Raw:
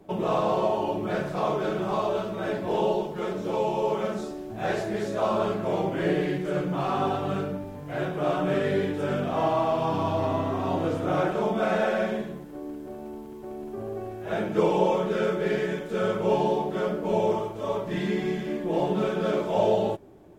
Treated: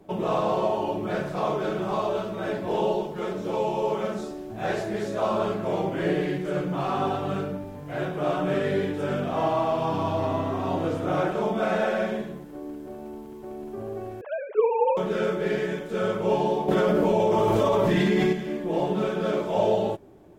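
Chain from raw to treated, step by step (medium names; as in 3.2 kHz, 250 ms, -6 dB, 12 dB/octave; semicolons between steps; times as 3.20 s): 14.21–14.97 s: formants replaced by sine waves; 16.68–18.33 s: level flattener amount 100%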